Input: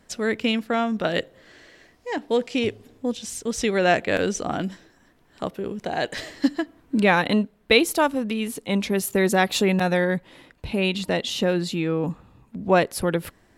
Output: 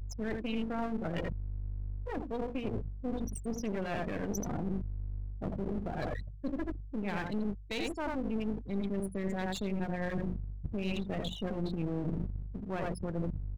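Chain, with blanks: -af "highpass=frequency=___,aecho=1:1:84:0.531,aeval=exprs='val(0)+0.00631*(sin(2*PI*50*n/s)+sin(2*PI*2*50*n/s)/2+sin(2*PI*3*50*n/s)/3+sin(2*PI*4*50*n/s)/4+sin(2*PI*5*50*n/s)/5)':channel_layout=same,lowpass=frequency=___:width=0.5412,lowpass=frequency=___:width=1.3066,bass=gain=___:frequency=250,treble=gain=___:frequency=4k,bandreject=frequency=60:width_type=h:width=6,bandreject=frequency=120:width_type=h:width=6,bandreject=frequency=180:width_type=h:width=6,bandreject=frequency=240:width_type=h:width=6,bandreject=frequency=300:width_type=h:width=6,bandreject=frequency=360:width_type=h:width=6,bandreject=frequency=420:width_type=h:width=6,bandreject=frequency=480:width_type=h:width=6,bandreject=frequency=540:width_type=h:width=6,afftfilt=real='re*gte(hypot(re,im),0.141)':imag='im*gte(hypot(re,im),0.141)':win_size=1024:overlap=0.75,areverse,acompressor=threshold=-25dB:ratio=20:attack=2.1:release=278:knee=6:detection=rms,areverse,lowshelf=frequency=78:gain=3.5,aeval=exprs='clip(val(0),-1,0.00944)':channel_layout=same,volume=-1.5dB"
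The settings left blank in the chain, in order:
52, 10k, 10k, 12, 5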